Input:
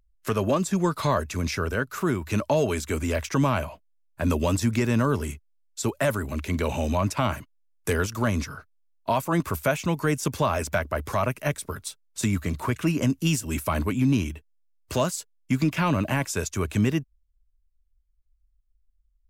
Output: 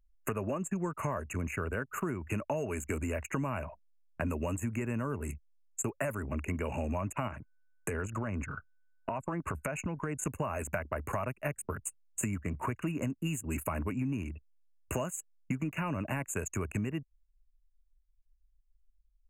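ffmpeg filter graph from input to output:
-filter_complex "[0:a]asettb=1/sr,asplit=3[s0][s1][s2];[s0]atrim=end=7.284[s3];[s1]atrim=start=7.28:end=10.27,asetpts=PTS-STARTPTS,afade=t=in:d=0.004:c=qsin,afade=t=out:st=2.986:d=0.004:c=qsin,lowpass=10000,aeval=exprs='val(0)+0.00158*sin(2*PI*1500*n/s)':c=same,acompressor=threshold=0.0447:ratio=6:attack=3.2:release=140:knee=1:detection=peak[s4];[s2]atrim=start=10.266[s5];[s3][s4]acrossfade=d=0.004:c1=hsin:c2=qsin[s6];[s6][s5]acrossfade=d=0.004:c1=qsin:c2=hsin,afftfilt=real='re*(1-between(b*sr/4096,2900,6300))':imag='im*(1-between(b*sr/4096,2900,6300))':win_size=4096:overlap=0.75,anlmdn=1.58,acompressor=threshold=0.0282:ratio=6"

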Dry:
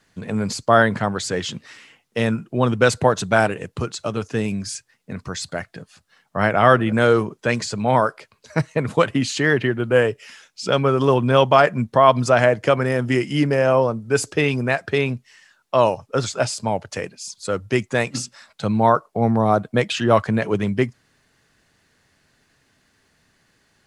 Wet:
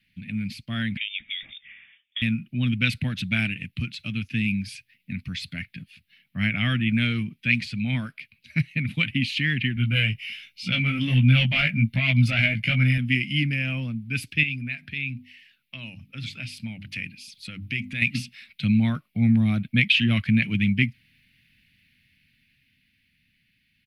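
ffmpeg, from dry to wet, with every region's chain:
-filter_complex "[0:a]asettb=1/sr,asplit=3[s0][s1][s2];[s0]atrim=end=0.974[s3];[s1]atrim=start=0.97:end=2.22,asetpts=PTS-STARTPTS,afade=t=in:d=0.004:c=qsin,afade=t=out:st=1.246:d=0.004:c=qsin,highpass=280,acompressor=threshold=0.0562:ratio=12:attack=3.2:release=140:knee=1:detection=peak,lowpass=f=3200:t=q:w=0.5098,lowpass=f=3200:t=q:w=0.6013,lowpass=f=3200:t=q:w=0.9,lowpass=f=3200:t=q:w=2.563,afreqshift=-3800[s4];[s2]atrim=start=2.216[s5];[s3][s4]acrossfade=d=0.004:c1=hsin:c2=qsin[s6];[s6][s5]acrossfade=d=0.004:c1=qsin:c2=hsin,asettb=1/sr,asplit=3[s7][s8][s9];[s7]atrim=end=9.754[s10];[s8]atrim=start=9.75:end=12.98,asetpts=PTS-STARTPTS,afade=t=in:d=0.004:c=qsin,afade=t=out:st=3.226:d=0.004:c=qsin,aecho=1:1:1.4:0.43,atrim=end_sample=142443,acontrast=49,flanger=delay=15.5:depth=3.9:speed=1.3[s11];[s9]atrim=start=12.976[s12];[s10][s11]acrossfade=d=0.004:c1=hsin:c2=qsin[s13];[s13][s12]acrossfade=d=0.004:c1=qsin:c2=hsin,asettb=1/sr,asplit=3[s14][s15][s16];[s14]atrim=end=14.434[s17];[s15]atrim=start=14.43:end=18.02,asetpts=PTS-STARTPTS,afade=t=in:d=0.004:c=qsin,afade=t=out:st=3.586:d=0.004:c=qsin,bandreject=f=50:t=h:w=6,bandreject=f=100:t=h:w=6,bandreject=f=150:t=h:w=6,bandreject=f=200:t=h:w=6,bandreject=f=250:t=h:w=6,bandreject=f=300:t=h:w=6,acompressor=threshold=0.0316:ratio=2:attack=3.2:release=140:knee=1:detection=peak[s18];[s16]atrim=start=18.016[s19];[s17][s18]acrossfade=d=0.004:c1=hsin:c2=qsin[s20];[s20][s19]acrossfade=d=0.004:c1=qsin:c2=hsin,firequalizer=gain_entry='entry(240,0);entry(410,-29);entry(660,-26);entry(950,-29);entry(2300,10);entry(7000,-22);entry(12000,2)':delay=0.05:min_phase=1,dynaudnorm=f=240:g=17:m=3.76,volume=0.531"

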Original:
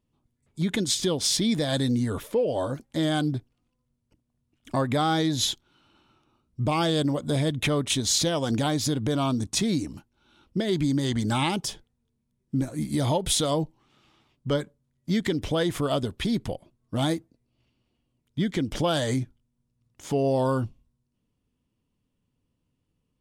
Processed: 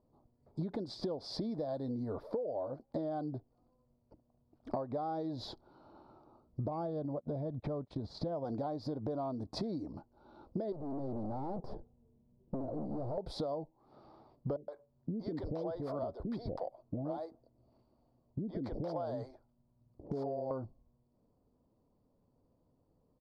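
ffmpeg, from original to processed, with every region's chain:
-filter_complex "[0:a]asettb=1/sr,asplit=3[s0][s1][s2];[s0]atrim=end=6.684[s3];[s1]atrim=start=6.68:end=8.45,asetpts=PTS-STARTPTS,afade=t=in:d=0.004:c=qsin,afade=t=out:st=1.766:d=0.004:c=qsin,bass=f=250:g=7,treble=f=4000:g=-8,acompressor=threshold=0.0501:ratio=2:attack=3.2:release=140:knee=1:detection=peak,agate=range=0.0447:threshold=0.0316:ratio=16:release=100:detection=peak[s4];[s2]atrim=start=8.446[s5];[s3][s4]acrossfade=d=0.004:c1=hsin:c2=qsin[s6];[s6][s5]acrossfade=d=0.004:c1=qsin:c2=hsin,asettb=1/sr,asplit=3[s7][s8][s9];[s7]atrim=end=10.724[s10];[s8]atrim=start=10.72:end=13.18,asetpts=PTS-STARTPTS,afade=t=in:d=0.004:c=qsin,afade=t=out:st=2.456:d=0.004:c=qsin,aeval=exprs='(tanh(89.1*val(0)+0.6)-tanh(0.6))/89.1':c=same,tiltshelf=f=940:g=9[s11];[s9]atrim=start=13.176[s12];[s10][s11]acrossfade=d=0.004:c1=hsin:c2=qsin[s13];[s13][s12]acrossfade=d=0.004:c1=qsin:c2=hsin,asettb=1/sr,asplit=3[s14][s15][s16];[s14]atrim=end=14.564[s17];[s15]atrim=start=14.56:end=20.51,asetpts=PTS-STARTPTS,afade=t=in:d=0.004:c=qsin,afade=t=out:st=5.946:d=0.004:c=qsin,acompressor=threshold=0.0355:ratio=4:attack=3.2:release=140:knee=1:detection=peak,acrossover=split=470[s18][s19];[s19]adelay=120[s20];[s18][s20]amix=inputs=2:normalize=0,atrim=end_sample=262395[s21];[s16]atrim=start=20.506[s22];[s17][s21]acrossfade=d=0.004:c1=hsin:c2=qsin[s23];[s23][s22]acrossfade=d=0.004:c1=qsin:c2=hsin,firequalizer=gain_entry='entry(150,0);entry(640,13);entry(1700,-11);entry(2900,-25);entry(4600,-3);entry(6500,-28)':delay=0.05:min_phase=1,acompressor=threshold=0.0158:ratio=12,volume=1.12"

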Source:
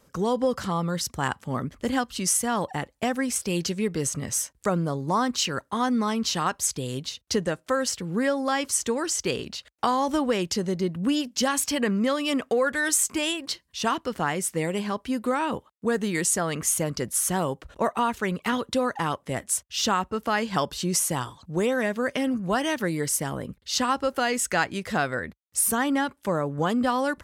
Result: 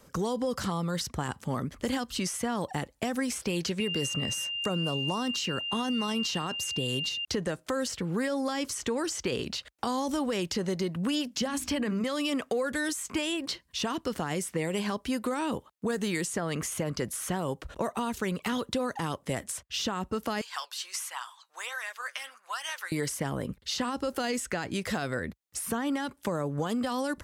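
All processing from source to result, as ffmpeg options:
-filter_complex "[0:a]asettb=1/sr,asplit=3[s0][s1][s2];[s0]atrim=end=3.804[s3];[s1]atrim=start=3.8:end=7.25,asetpts=PTS-STARTPTS,afade=t=in:d=0.004:c=qsin,afade=t=out:st=3.446:d=0.004:c=qsin,highpass=81,aeval=exprs='val(0)+0.0282*sin(2*PI*2800*n/s)':c=same[s4];[s2]atrim=start=7.246[s5];[s3][s4]acrossfade=d=0.004:c1=hsin:c2=qsin[s6];[s6][s5]acrossfade=d=0.004:c1=qsin:c2=hsin,asettb=1/sr,asplit=3[s7][s8][s9];[s7]atrim=end=11.414[s10];[s8]atrim=start=11.41:end=12.04,asetpts=PTS-STARTPTS,afade=t=in:d=0.004:c=qsin,afade=t=out:st=0.626:d=0.004:c=qsin,equalizer=f=88:w=0.43:g=8.5,bandreject=f=50:t=h:w=6,bandreject=f=100:t=h:w=6,bandreject=f=150:t=h:w=6,bandreject=f=200:t=h:w=6,bandreject=f=250:t=h:w=6,bandreject=f=300:t=h:w=6,bandreject=f=350:t=h:w=6,bandreject=f=400:t=h:w=6[s11];[s9]atrim=start=12.036[s12];[s10][s11]acrossfade=d=0.004:c1=hsin:c2=qsin[s13];[s13][s12]acrossfade=d=0.004:c1=qsin:c2=hsin,asettb=1/sr,asplit=3[s14][s15][s16];[s14]atrim=end=20.414[s17];[s15]atrim=start=20.41:end=22.92,asetpts=PTS-STARTPTS,afade=t=in:d=0.004:c=qsin,afade=t=out:st=2.506:d=0.004:c=qsin,highpass=f=1000:w=0.5412,highpass=f=1000:w=1.3066,flanger=delay=0.7:depth=7.7:regen=67:speed=1.4:shape=sinusoidal[s18];[s16]atrim=start=22.916[s19];[s17][s18]acrossfade=d=0.004:c1=hsin:c2=qsin[s20];[s20][s19]acrossfade=d=0.004:c1=qsin:c2=hsin,alimiter=limit=0.119:level=0:latency=1:release=28,acrossover=split=500|3700[s21][s22][s23];[s21]acompressor=threshold=0.02:ratio=4[s24];[s22]acompressor=threshold=0.0126:ratio=4[s25];[s23]acompressor=threshold=0.00891:ratio=4[s26];[s24][s25][s26]amix=inputs=3:normalize=0,volume=1.5"

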